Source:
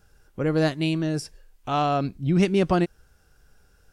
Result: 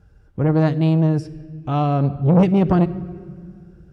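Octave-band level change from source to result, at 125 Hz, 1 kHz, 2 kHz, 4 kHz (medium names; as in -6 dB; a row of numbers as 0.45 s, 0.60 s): +9.5 dB, +1.5 dB, -3.5 dB, no reading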